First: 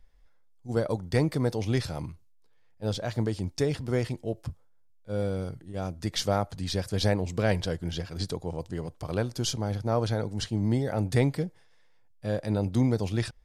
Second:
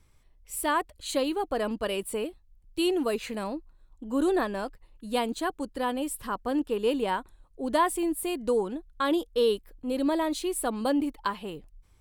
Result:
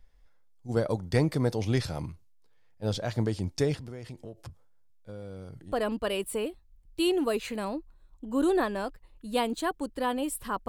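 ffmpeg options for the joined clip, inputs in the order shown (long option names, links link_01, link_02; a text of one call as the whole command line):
ffmpeg -i cue0.wav -i cue1.wav -filter_complex "[0:a]asettb=1/sr,asplit=3[link_01][link_02][link_03];[link_01]atrim=end=3.744[link_04];[link_02]atrim=start=3.74:end=5.72,asetpts=PTS-STARTPTS,afade=type=in:duration=0.004:curve=qsin,afade=type=out:start_time=1.976:duration=0.004:curve=qsin,acompressor=threshold=-39dB:ratio=5:attack=3.2:release=140:knee=1:detection=peak[link_05];[link_03]atrim=start=5.716[link_06];[link_04][link_05]acrossfade=duration=0.004:curve1=hsin:curve2=qsin[link_07];[link_07][link_06]acrossfade=duration=0.004:curve1=qsin:curve2=hsin,apad=whole_dur=10.68,atrim=end=10.68,atrim=end=5.722[link_08];[1:a]atrim=start=1.508:end=6.47[link_09];[link_08][link_09]acrossfade=duration=0.004:curve1=hsin:curve2=hsin" out.wav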